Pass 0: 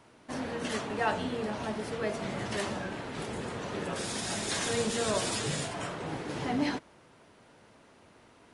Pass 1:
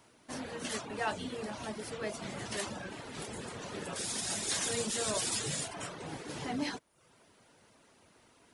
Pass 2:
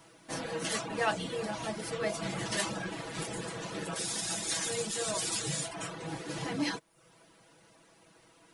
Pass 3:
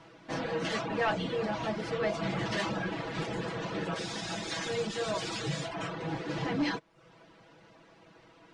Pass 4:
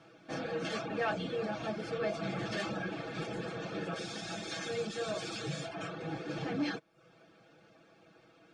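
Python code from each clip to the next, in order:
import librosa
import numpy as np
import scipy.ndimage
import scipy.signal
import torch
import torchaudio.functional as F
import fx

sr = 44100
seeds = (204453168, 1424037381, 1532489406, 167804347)

y1 = fx.dereverb_blind(x, sr, rt60_s=0.53)
y1 = fx.high_shelf(y1, sr, hz=4600.0, db=11.0)
y1 = y1 * librosa.db_to_amplitude(-5.0)
y2 = y1 + 0.77 * np.pad(y1, (int(6.1 * sr / 1000.0), 0))[:len(y1)]
y2 = fx.rider(y2, sr, range_db=4, speed_s=2.0)
y3 = 10.0 ** (-26.5 / 20.0) * np.tanh(y2 / 10.0 ** (-26.5 / 20.0))
y3 = fx.air_absorb(y3, sr, metres=170.0)
y3 = y3 * librosa.db_to_amplitude(5.0)
y4 = fx.notch_comb(y3, sr, f0_hz=980.0)
y4 = y4 * librosa.db_to_amplitude(-3.0)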